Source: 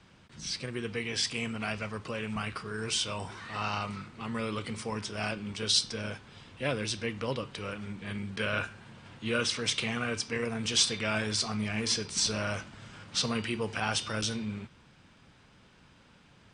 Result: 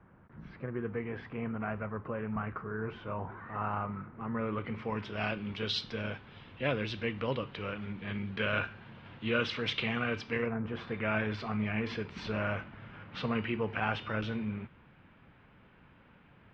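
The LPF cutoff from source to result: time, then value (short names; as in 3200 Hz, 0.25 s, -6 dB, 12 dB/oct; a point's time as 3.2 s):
LPF 24 dB/oct
4.27 s 1600 Hz
5.15 s 3400 Hz
10.4 s 3400 Hz
10.6 s 1400 Hz
11.2 s 2600 Hz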